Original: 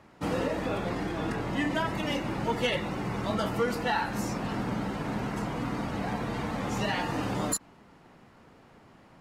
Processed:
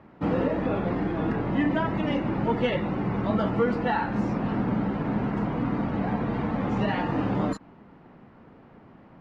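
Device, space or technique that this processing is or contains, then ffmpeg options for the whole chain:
phone in a pocket: -af "lowpass=3.2k,equalizer=f=220:t=o:w=1.5:g=4,highshelf=f=2.4k:g=-8,volume=3dB"

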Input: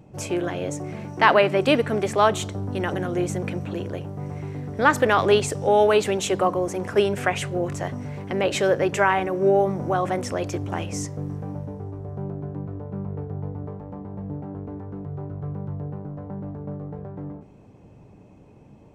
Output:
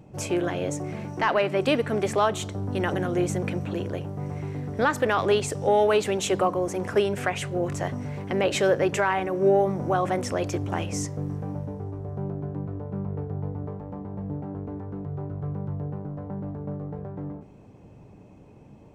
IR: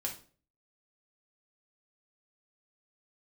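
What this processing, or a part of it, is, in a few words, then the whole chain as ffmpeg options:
soft clipper into limiter: -af "asoftclip=type=tanh:threshold=-4dB,alimiter=limit=-12dB:level=0:latency=1:release=497"

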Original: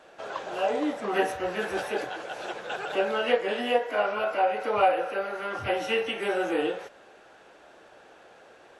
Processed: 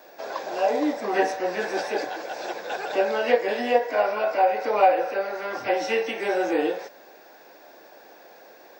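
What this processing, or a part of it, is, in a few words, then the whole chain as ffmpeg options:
old television with a line whistle: -af "highpass=f=190:w=0.5412,highpass=f=190:w=1.3066,equalizer=f=200:t=q:w=4:g=-5,equalizer=f=410:t=q:w=4:g=-3,equalizer=f=1.3k:t=q:w=4:g=-9,equalizer=f=3k:t=q:w=4:g=-10,equalizer=f=5.1k:t=q:w=4:g=7,lowpass=f=7.4k:w=0.5412,lowpass=f=7.4k:w=1.3066,aeval=exprs='val(0)+0.000891*sin(2*PI*15625*n/s)':c=same,volume=5dB"

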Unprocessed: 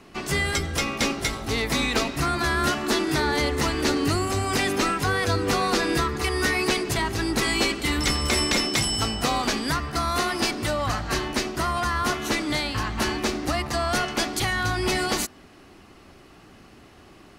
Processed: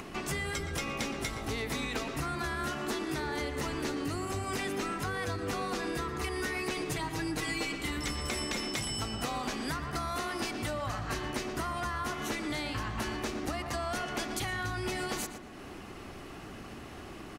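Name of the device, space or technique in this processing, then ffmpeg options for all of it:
upward and downward compression: -filter_complex "[0:a]asettb=1/sr,asplit=3[a][b][c];[a]atrim=end=6.764[d];[b]atrim=start=6.76:end=7.78,asetpts=PTS-STARTPTS,afade=t=in:d=0.004:c=qsin,afade=t=out:st=1.016:d=0.004:c=qsin,aecho=1:1:6.5:0.9,atrim=end_sample=44982[e];[c]atrim=start=7.776[f];[d][e]acrossfade=d=0.004:c1=hsin:c2=qsin[g];[g][f]acrossfade=d=0.004:c1=qsin:c2=hsin,equalizer=f=4.5k:t=o:w=0.57:g=-3.5,asplit=2[h][i];[i]adelay=117,lowpass=f=2.5k:p=1,volume=-9.5dB,asplit=2[j][k];[k]adelay=117,lowpass=f=2.5k:p=1,volume=0.36,asplit=2[l][m];[m]adelay=117,lowpass=f=2.5k:p=1,volume=0.36,asplit=2[n][o];[o]adelay=117,lowpass=f=2.5k:p=1,volume=0.36[p];[h][j][l][n][p]amix=inputs=5:normalize=0,acompressor=mode=upward:threshold=-32dB:ratio=2.5,acompressor=threshold=-28dB:ratio=6,volume=-3.5dB"

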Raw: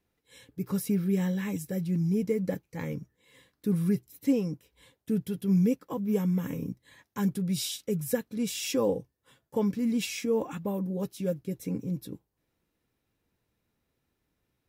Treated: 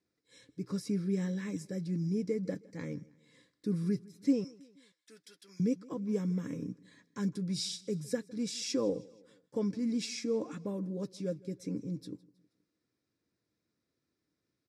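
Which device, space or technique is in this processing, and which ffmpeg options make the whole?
car door speaker: -filter_complex "[0:a]asettb=1/sr,asplit=3[a][b][c];[a]atrim=end=4.444[d];[b]atrim=start=4.44:end=5.6,asetpts=PTS-STARTPTS,afade=t=in:d=0.004:c=qsin,afade=t=out:st=1.156:d=0.004:c=qsin,highpass=1.2k[e];[c]atrim=start=5.596[f];[d][e]acrossfade=d=0.004:c1=hsin:c2=qsin[g];[g][f]acrossfade=d=0.004:c1=qsin:c2=hsin,highpass=110,equalizer=f=310:t=q:w=4:g=6,equalizer=f=840:t=q:w=4:g=-9,equalizer=f=2.9k:t=q:w=4:g=-8,equalizer=f=5.2k:t=q:w=4:g=4,lowpass=f=8.9k:w=0.5412,lowpass=f=8.9k:w=1.3066,equalizer=f=4.6k:w=3.1:g=4.5,aecho=1:1:159|318|477:0.0708|0.0347|0.017,volume=-5.5dB"

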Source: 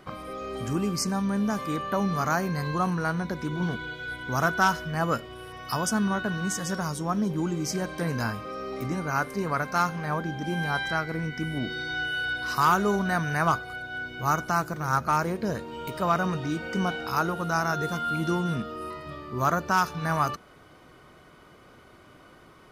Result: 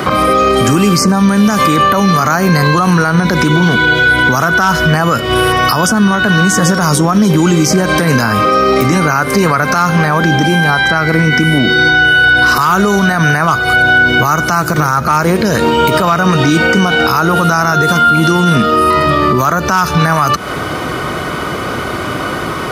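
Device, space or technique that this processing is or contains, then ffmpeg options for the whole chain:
mastering chain: -filter_complex "[0:a]highpass=59,equalizer=f=1.3k:t=o:w=0.29:g=3,acrossover=split=140|1700[a][b][c];[a]acompressor=threshold=-49dB:ratio=4[d];[b]acompressor=threshold=-35dB:ratio=4[e];[c]acompressor=threshold=-42dB:ratio=4[f];[d][e][f]amix=inputs=3:normalize=0,acompressor=threshold=-43dB:ratio=1.5,alimiter=level_in=35dB:limit=-1dB:release=50:level=0:latency=1,volume=-1dB"

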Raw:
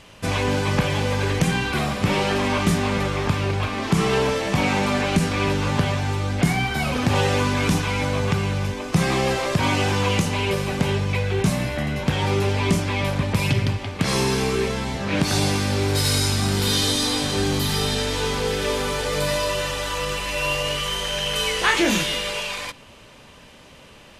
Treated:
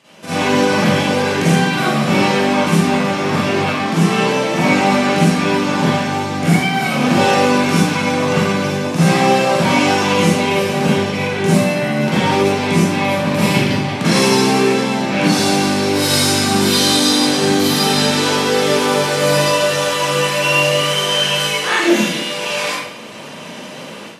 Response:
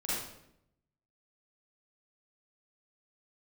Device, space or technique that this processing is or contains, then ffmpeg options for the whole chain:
far laptop microphone: -filter_complex "[1:a]atrim=start_sample=2205[a];[0:a][a]afir=irnorm=-1:irlink=0,highpass=f=150:w=0.5412,highpass=f=150:w=1.3066,dynaudnorm=f=280:g=3:m=11.5dB,volume=-1dB"

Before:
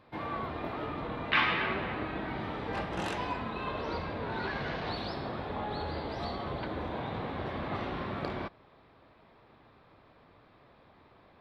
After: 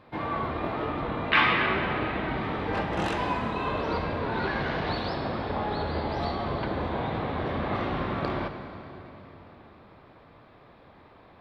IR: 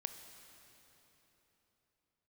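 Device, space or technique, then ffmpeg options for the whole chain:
swimming-pool hall: -filter_complex "[1:a]atrim=start_sample=2205[a];[0:a][a]afir=irnorm=-1:irlink=0,highshelf=f=5.3k:g=-6.5,volume=8.5dB"

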